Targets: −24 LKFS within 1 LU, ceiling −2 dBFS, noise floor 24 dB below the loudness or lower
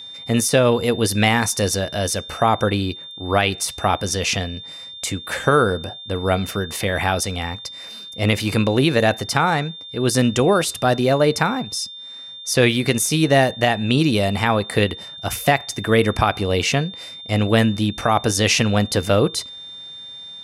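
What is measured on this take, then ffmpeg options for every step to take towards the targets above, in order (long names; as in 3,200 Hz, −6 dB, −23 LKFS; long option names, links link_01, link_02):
interfering tone 3,600 Hz; level of the tone −34 dBFS; integrated loudness −19.5 LKFS; sample peak −3.5 dBFS; target loudness −24.0 LKFS
→ -af "bandreject=frequency=3600:width=30"
-af "volume=-4.5dB"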